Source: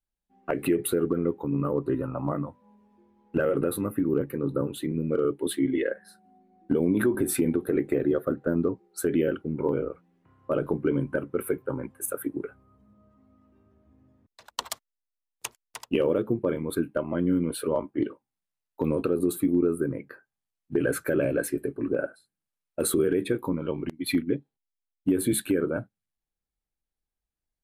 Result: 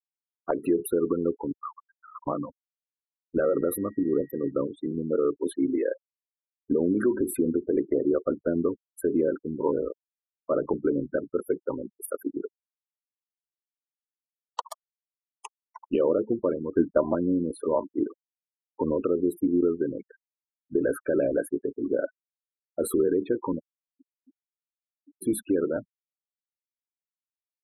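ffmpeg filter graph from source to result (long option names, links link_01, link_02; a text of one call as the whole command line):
ffmpeg -i in.wav -filter_complex "[0:a]asettb=1/sr,asplit=3[link_01][link_02][link_03];[link_01]atrim=end=1.524[link_04];[link_02]atrim=start=1.52:end=2.27,asetpts=PTS-STARTPTS,afade=type=in:duration=0.004:curve=qsin,afade=type=out:start_time=0.746:duration=0.004:curve=qsin,aeval=exprs='val(0)+0.5*0.0141*sgn(val(0))':channel_layout=same,highpass=frequency=1100:width=0.5412,highpass=frequency=1100:width=1.3066[link_05];[link_03]atrim=start=2.266[link_06];[link_04][link_05]acrossfade=duration=0.004:curve1=hsin:curve2=qsin[link_07];[link_07][link_06]acrossfade=duration=0.004:curve1=qsin:curve2=hsin,asettb=1/sr,asplit=3[link_08][link_09][link_10];[link_08]atrim=end=3.414[link_11];[link_09]atrim=start=3.41:end=4.51,asetpts=PTS-STARTPTS,afade=type=in:duration=0.004:curve=qsin,afade=type=out:start_time=1.096:duration=0.004:curve=qsin,highshelf=frequency=7000:gain=8.5,aeval=exprs='val(0)+0.00447*sin(2*PI*1900*n/s)':channel_layout=same[link_12];[link_10]atrim=start=4.506[link_13];[link_11][link_12]acrossfade=duration=0.004:curve1=hsin:curve2=qsin[link_14];[link_14][link_13]acrossfade=duration=0.004:curve1=qsin:curve2=hsin,asettb=1/sr,asplit=3[link_15][link_16][link_17];[link_15]atrim=end=16.724[link_18];[link_16]atrim=start=16.72:end=17.15,asetpts=PTS-STARTPTS,afade=type=in:duration=0.004:curve=qsin,afade=type=out:start_time=0.426:duration=0.004:curve=qsin,lowpass=1600,acontrast=27[link_19];[link_17]atrim=start=17.146[link_20];[link_18][link_19]acrossfade=duration=0.004:curve1=hsin:curve2=qsin[link_21];[link_21][link_20]acrossfade=duration=0.004:curve1=qsin:curve2=hsin,asettb=1/sr,asplit=3[link_22][link_23][link_24];[link_22]atrim=end=23.594[link_25];[link_23]atrim=start=23.59:end=25.22,asetpts=PTS-STARTPTS,afade=type=in:duration=0.004:curve=qsin,afade=type=out:start_time=1.626:duration=0.004:curve=qsin,bandpass=frequency=2500:width_type=q:width=0.68,acompressor=threshold=-47dB:ratio=12:attack=3.2:release=140:knee=1:detection=peak[link_26];[link_24]atrim=start=25.216[link_27];[link_25][link_26]acrossfade=duration=0.004:curve1=hsin:curve2=qsin[link_28];[link_28][link_27]acrossfade=duration=0.004:curve1=qsin:curve2=hsin,afftfilt=real='re*gte(hypot(re,im),0.0355)':imag='im*gte(hypot(re,im),0.0355)':win_size=1024:overlap=0.75,equalizer=frequency=125:width_type=o:width=1:gain=-12,equalizer=frequency=1000:width_type=o:width=1:gain=5,equalizer=frequency=2000:width_type=o:width=1:gain=-11,equalizer=frequency=4000:width_type=o:width=1:gain=-8,equalizer=frequency=8000:width_type=o:width=1:gain=-9,volume=1.5dB" out.wav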